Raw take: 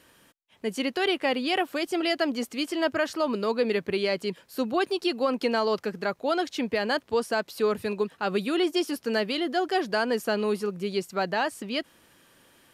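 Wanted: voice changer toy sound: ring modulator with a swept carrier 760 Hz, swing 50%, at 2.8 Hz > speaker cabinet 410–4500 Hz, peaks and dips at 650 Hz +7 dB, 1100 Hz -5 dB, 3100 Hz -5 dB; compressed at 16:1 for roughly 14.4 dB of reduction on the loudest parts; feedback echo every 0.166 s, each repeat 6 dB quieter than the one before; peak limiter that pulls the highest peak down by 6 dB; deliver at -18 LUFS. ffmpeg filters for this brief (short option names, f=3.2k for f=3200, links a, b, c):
-af "acompressor=threshold=-35dB:ratio=16,alimiter=level_in=6.5dB:limit=-24dB:level=0:latency=1,volume=-6.5dB,aecho=1:1:166|332|498|664|830|996:0.501|0.251|0.125|0.0626|0.0313|0.0157,aeval=exprs='val(0)*sin(2*PI*760*n/s+760*0.5/2.8*sin(2*PI*2.8*n/s))':c=same,highpass=410,equalizer=f=650:t=q:w=4:g=7,equalizer=f=1.1k:t=q:w=4:g=-5,equalizer=f=3.1k:t=q:w=4:g=-5,lowpass=f=4.5k:w=0.5412,lowpass=f=4.5k:w=1.3066,volume=25dB"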